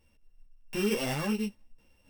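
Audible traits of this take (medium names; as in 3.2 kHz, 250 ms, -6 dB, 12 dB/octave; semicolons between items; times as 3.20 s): a buzz of ramps at a fixed pitch in blocks of 16 samples; random-step tremolo 4.4 Hz; a shimmering, thickened sound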